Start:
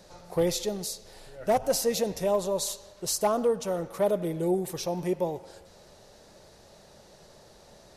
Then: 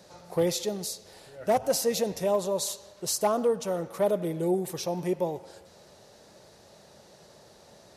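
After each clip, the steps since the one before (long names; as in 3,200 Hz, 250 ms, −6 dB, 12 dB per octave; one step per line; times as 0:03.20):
high-pass filter 82 Hz 12 dB per octave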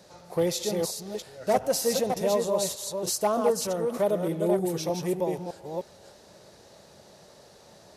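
delay that plays each chunk backwards 306 ms, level −4 dB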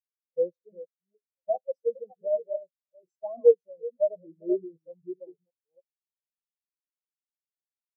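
hum removal 137.7 Hz, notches 3
every bin expanded away from the loudest bin 4 to 1
level +4 dB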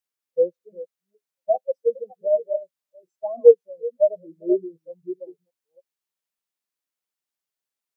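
low-shelf EQ 130 Hz −9.5 dB
level +7 dB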